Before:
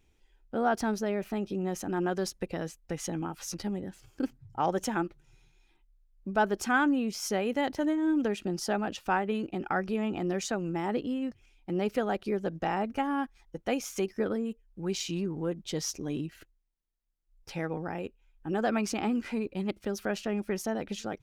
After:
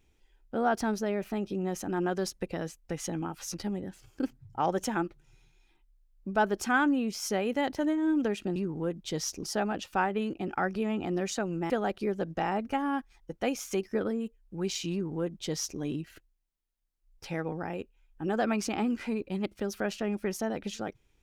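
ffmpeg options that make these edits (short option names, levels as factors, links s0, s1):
-filter_complex "[0:a]asplit=4[s0][s1][s2][s3];[s0]atrim=end=8.562[s4];[s1]atrim=start=15.168:end=16.042[s5];[s2]atrim=start=8.558:end=10.832[s6];[s3]atrim=start=11.948[s7];[s4][s5]acrossfade=d=0.004:c1=hsin:c2=hsin[s8];[s8][s6]acrossfade=d=0.004:c1=hsin:c2=hsin[s9];[s9][s7]acrossfade=d=0.004:c1=hsin:c2=hsin"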